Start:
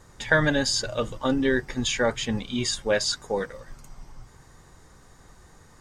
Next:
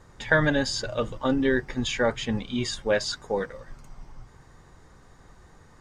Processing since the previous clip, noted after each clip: treble shelf 6 kHz -11.5 dB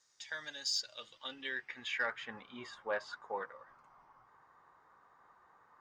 band-pass sweep 5.6 kHz -> 1.1 kHz, 0.70–2.55 s; saturation -20.5 dBFS, distortion -25 dB; trim -1.5 dB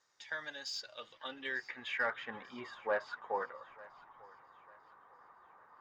overdrive pedal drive 7 dB, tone 1 kHz, clips at -23.5 dBFS; thinning echo 895 ms, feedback 42%, high-pass 510 Hz, level -20 dB; trim +4.5 dB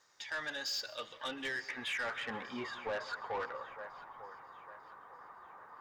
peak limiter -31.5 dBFS, peak gain reduction 8.5 dB; saturation -39.5 dBFS, distortion -12 dB; on a send at -16.5 dB: reverberation RT60 1.1 s, pre-delay 112 ms; on the sum: trim +7 dB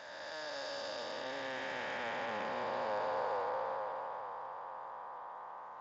spectral blur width 773 ms; high-order bell 720 Hz +10 dB 1.2 oct; trim +2 dB; Speex 34 kbps 16 kHz

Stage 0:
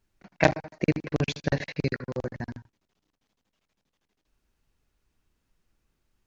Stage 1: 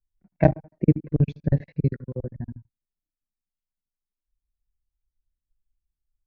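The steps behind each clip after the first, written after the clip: tilt EQ -2.5 dB/octave; spectral contrast expander 1.5:1; trim -1 dB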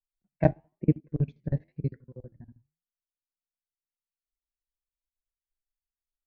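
flange 1 Hz, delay 5.3 ms, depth 8.1 ms, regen -82%; upward expansion 1.5:1, over -43 dBFS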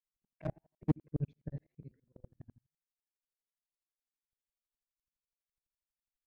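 hard clipper -13.5 dBFS, distortion -12 dB; sawtooth tremolo in dB swelling 12 Hz, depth 36 dB

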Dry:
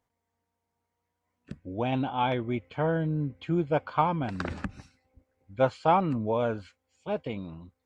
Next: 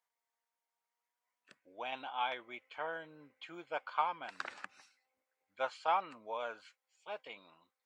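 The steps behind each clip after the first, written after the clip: high-pass 980 Hz 12 dB/octave; trim -4 dB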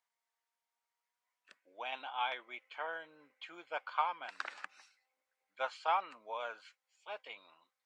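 frequency weighting A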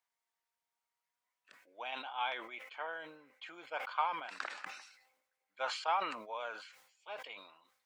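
decay stretcher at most 70 dB/s; trim -1 dB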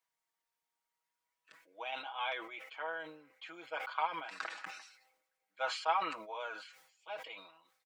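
comb 6.2 ms, depth 71%; trim -1.5 dB

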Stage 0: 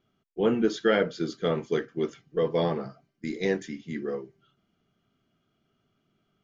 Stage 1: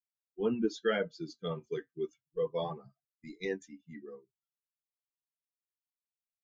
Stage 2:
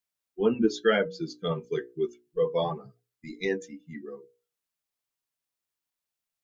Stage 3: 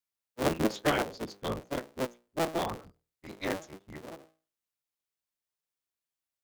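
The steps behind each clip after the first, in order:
expander on every frequency bin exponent 2; flange 0.32 Hz, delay 1.2 ms, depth 5.8 ms, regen -72%
hum notches 60/120/180/240/300/360/420/480/540 Hz; trim +7.5 dB
cycle switcher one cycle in 3, inverted; trim -4.5 dB

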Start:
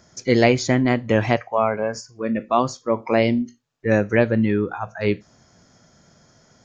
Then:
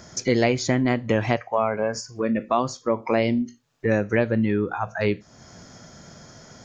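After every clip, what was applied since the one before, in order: compression 2:1, threshold -37 dBFS, peak gain reduction 14.5 dB; trim +9 dB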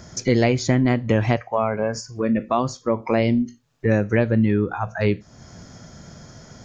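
bass shelf 180 Hz +8.5 dB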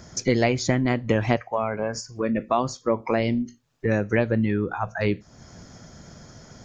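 harmonic-percussive split harmonic -5 dB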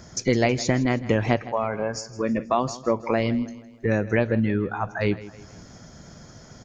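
feedback delay 160 ms, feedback 44%, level -17 dB

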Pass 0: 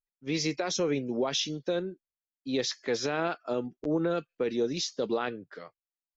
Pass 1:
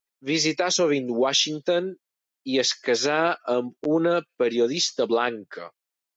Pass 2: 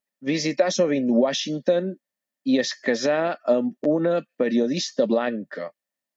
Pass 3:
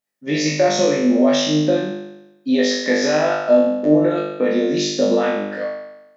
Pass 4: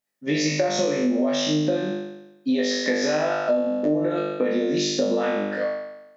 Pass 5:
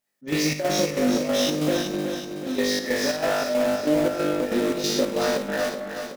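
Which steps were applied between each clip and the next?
high-pass 320 Hz 6 dB/octave; trim +9 dB
compression 3:1, threshold -23 dBFS, peak gain reduction 5.5 dB; small resonant body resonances 220/570/1800 Hz, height 15 dB, ringing for 35 ms; trim -2.5 dB
flutter echo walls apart 3.4 m, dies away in 0.95 s
compression, threshold -19 dBFS, peak gain reduction 10 dB
in parallel at -9.5 dB: integer overflow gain 22 dB; on the sum: square tremolo 3.1 Hz, depth 60%, duty 65%; feedback delay 374 ms, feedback 53%, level -7 dB

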